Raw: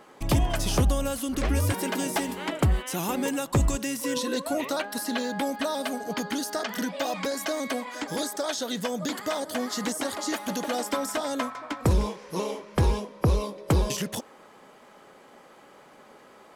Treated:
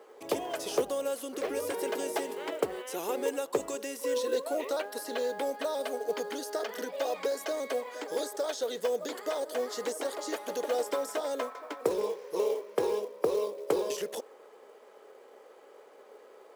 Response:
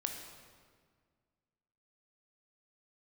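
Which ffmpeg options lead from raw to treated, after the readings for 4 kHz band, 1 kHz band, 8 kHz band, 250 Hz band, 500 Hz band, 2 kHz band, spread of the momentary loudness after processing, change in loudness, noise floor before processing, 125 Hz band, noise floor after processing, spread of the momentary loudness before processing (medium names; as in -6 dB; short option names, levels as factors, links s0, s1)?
-8.0 dB, -5.5 dB, -8.0 dB, -11.0 dB, +1.5 dB, -7.5 dB, 4 LU, -5.0 dB, -53 dBFS, under -25 dB, -55 dBFS, 6 LU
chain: -af "highpass=f=440:t=q:w=4.9,acrusher=bits=6:mode=log:mix=0:aa=0.000001,volume=0.398"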